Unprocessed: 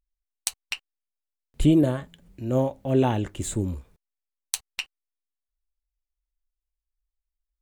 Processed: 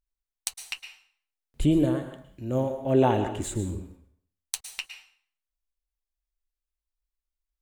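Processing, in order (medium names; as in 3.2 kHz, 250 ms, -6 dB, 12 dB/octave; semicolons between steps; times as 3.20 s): 2.86–3.50 s: peaking EQ 790 Hz +6 dB 2.8 oct; plate-style reverb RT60 0.56 s, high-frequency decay 0.85×, pre-delay 100 ms, DRR 8 dB; trim -3.5 dB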